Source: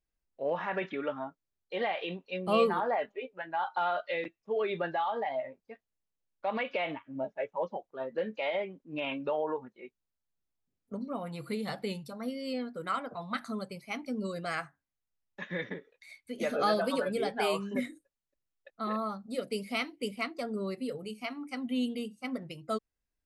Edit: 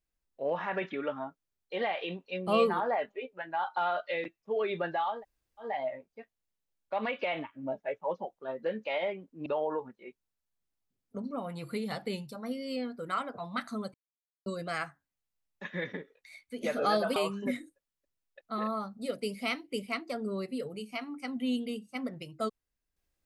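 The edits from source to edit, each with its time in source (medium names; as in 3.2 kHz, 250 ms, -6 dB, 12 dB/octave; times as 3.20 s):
5.17 s: insert room tone 0.48 s, crossfade 0.16 s
8.98–9.23 s: delete
13.71–14.23 s: mute
16.93–17.45 s: delete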